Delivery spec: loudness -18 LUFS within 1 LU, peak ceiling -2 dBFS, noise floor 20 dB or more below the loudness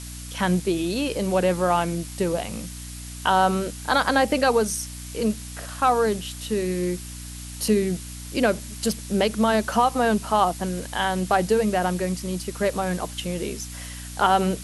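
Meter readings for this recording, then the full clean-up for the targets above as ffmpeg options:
hum 60 Hz; harmonics up to 300 Hz; hum level -35 dBFS; noise floor -37 dBFS; noise floor target -44 dBFS; loudness -23.5 LUFS; peak -6.0 dBFS; loudness target -18.0 LUFS
-> -af "bandreject=f=60:t=h:w=4,bandreject=f=120:t=h:w=4,bandreject=f=180:t=h:w=4,bandreject=f=240:t=h:w=4,bandreject=f=300:t=h:w=4"
-af "afftdn=nr=7:nf=-37"
-af "volume=5.5dB,alimiter=limit=-2dB:level=0:latency=1"

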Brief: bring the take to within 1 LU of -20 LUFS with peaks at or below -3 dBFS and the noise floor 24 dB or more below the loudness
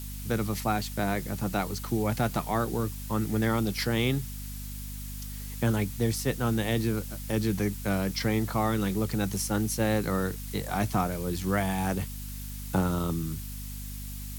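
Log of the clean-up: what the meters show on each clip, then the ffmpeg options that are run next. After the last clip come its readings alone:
hum 50 Hz; harmonics up to 250 Hz; hum level -36 dBFS; noise floor -38 dBFS; noise floor target -54 dBFS; loudness -29.5 LUFS; peak -13.5 dBFS; loudness target -20.0 LUFS
-> -af "bandreject=f=50:t=h:w=6,bandreject=f=100:t=h:w=6,bandreject=f=150:t=h:w=6,bandreject=f=200:t=h:w=6,bandreject=f=250:t=h:w=6"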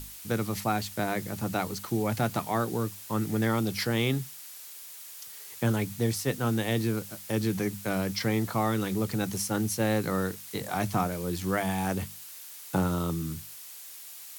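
hum none; noise floor -45 dBFS; noise floor target -54 dBFS
-> -af "afftdn=nr=9:nf=-45"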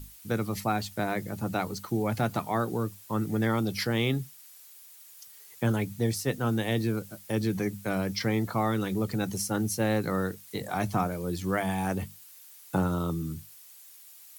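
noise floor -52 dBFS; noise floor target -54 dBFS
-> -af "afftdn=nr=6:nf=-52"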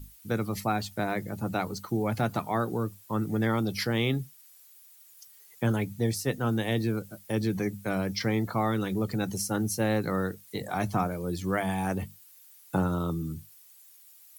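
noise floor -55 dBFS; loudness -30.0 LUFS; peak -13.5 dBFS; loudness target -20.0 LUFS
-> -af "volume=10dB"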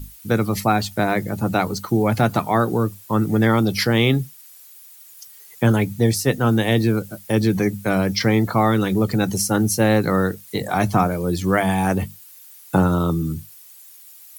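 loudness -20.0 LUFS; peak -3.5 dBFS; noise floor -45 dBFS

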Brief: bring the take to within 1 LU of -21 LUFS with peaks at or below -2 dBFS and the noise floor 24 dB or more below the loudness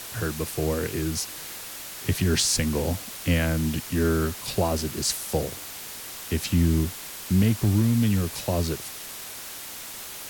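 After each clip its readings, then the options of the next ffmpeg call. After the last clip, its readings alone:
noise floor -39 dBFS; noise floor target -50 dBFS; loudness -26.0 LUFS; peak -10.0 dBFS; loudness target -21.0 LUFS
-> -af "afftdn=nr=11:nf=-39"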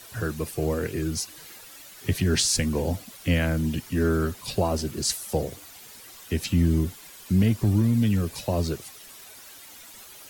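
noise floor -46 dBFS; noise floor target -50 dBFS
-> -af "afftdn=nr=6:nf=-46"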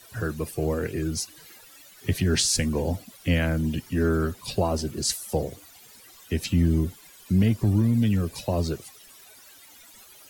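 noise floor -51 dBFS; loudness -26.0 LUFS; peak -10.5 dBFS; loudness target -21.0 LUFS
-> -af "volume=5dB"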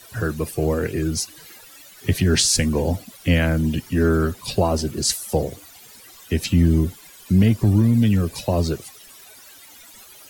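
loudness -21.0 LUFS; peak -5.5 dBFS; noise floor -46 dBFS

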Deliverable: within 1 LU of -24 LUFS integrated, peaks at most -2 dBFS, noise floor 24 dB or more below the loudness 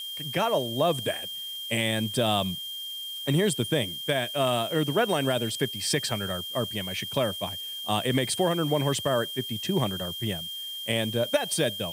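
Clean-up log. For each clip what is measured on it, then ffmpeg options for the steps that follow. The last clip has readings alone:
steady tone 3200 Hz; tone level -34 dBFS; noise floor -37 dBFS; noise floor target -52 dBFS; loudness -27.5 LUFS; peak -11.0 dBFS; loudness target -24.0 LUFS
-> -af "bandreject=f=3.2k:w=30"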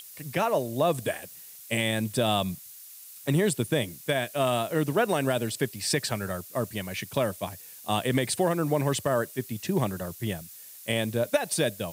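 steady tone none; noise floor -47 dBFS; noise floor target -52 dBFS
-> -af "afftdn=nr=6:nf=-47"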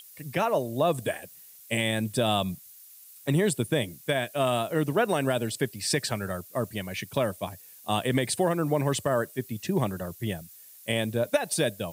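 noise floor -51 dBFS; noise floor target -52 dBFS
-> -af "afftdn=nr=6:nf=-51"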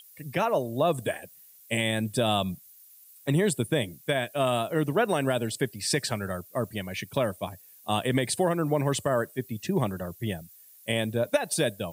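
noise floor -54 dBFS; loudness -28.0 LUFS; peak -11.5 dBFS; loudness target -24.0 LUFS
-> -af "volume=4dB"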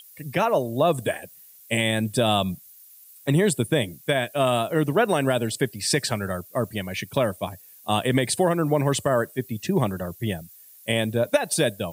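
loudness -24.0 LUFS; peak -7.5 dBFS; noise floor -50 dBFS

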